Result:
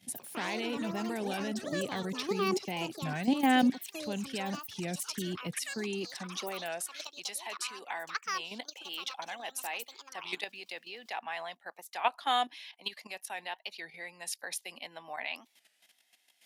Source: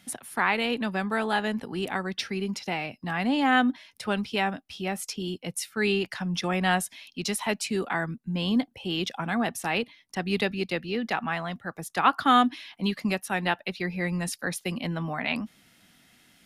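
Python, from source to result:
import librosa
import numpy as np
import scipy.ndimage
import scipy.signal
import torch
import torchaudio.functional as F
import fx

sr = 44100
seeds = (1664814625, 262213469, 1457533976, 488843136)

y = fx.peak_eq(x, sr, hz=1300.0, db=-14.5, octaves=0.61)
y = fx.level_steps(y, sr, step_db=12)
y = fx.filter_sweep_highpass(y, sr, from_hz=100.0, to_hz=840.0, start_s=5.48, end_s=7.03, q=1.1)
y = fx.echo_pitch(y, sr, ms=100, semitones=7, count=3, db_per_echo=-6.0)
y = fx.record_warp(y, sr, rpm=33.33, depth_cents=160.0)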